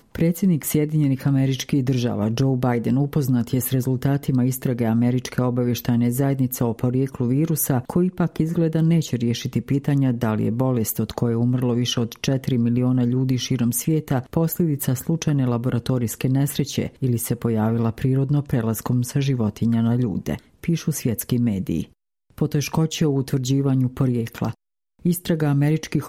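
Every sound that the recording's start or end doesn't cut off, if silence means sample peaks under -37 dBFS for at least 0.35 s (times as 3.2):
22.38–24.53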